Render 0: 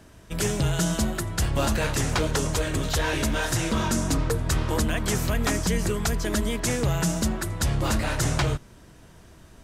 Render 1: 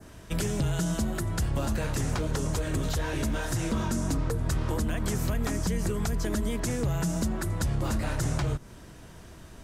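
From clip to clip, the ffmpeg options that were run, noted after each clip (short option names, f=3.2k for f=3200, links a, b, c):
-filter_complex "[0:a]acompressor=threshold=-26dB:ratio=6,adynamicequalizer=threshold=0.00316:dfrequency=3100:dqfactor=0.83:tfrequency=3100:tqfactor=0.83:attack=5:release=100:ratio=0.375:range=2:mode=cutabove:tftype=bell,acrossover=split=330[a][b];[b]acompressor=threshold=-38dB:ratio=2[c];[a][c]amix=inputs=2:normalize=0,volume=2.5dB"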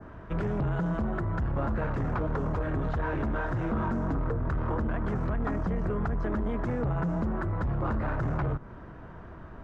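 -af "asoftclip=type=tanh:threshold=-27dB,lowpass=f=1.3k:t=q:w=1.6,volume=2.5dB"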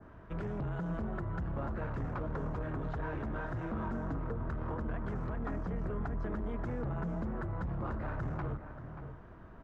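-filter_complex "[0:a]asplit=2[a][b];[b]adelay=583.1,volume=-9dB,highshelf=f=4k:g=-13.1[c];[a][c]amix=inputs=2:normalize=0,volume=-8dB"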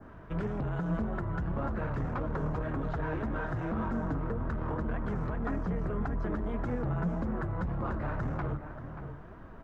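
-af "flanger=delay=3.6:depth=3.3:regen=69:speed=1.8:shape=sinusoidal,volume=8.5dB"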